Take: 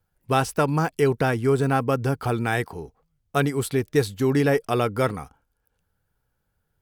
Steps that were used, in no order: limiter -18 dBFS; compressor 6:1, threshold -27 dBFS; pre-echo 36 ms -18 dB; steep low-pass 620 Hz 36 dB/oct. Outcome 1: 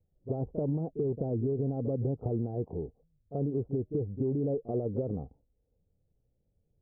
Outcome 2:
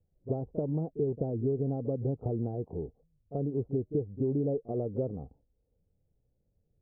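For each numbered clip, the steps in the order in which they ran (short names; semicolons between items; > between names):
pre-echo > limiter > steep low-pass > compressor; pre-echo > compressor > limiter > steep low-pass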